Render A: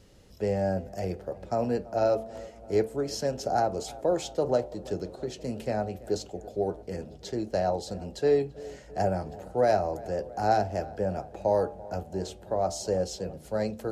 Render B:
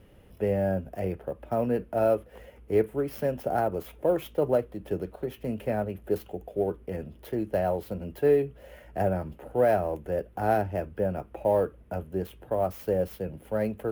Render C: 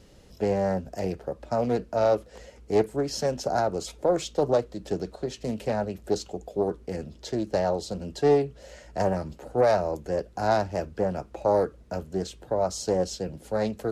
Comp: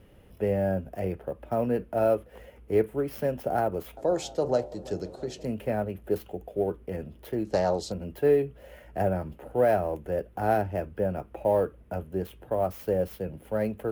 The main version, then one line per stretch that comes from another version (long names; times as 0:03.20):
B
0:03.97–0:05.45: punch in from A
0:07.45–0:07.92: punch in from C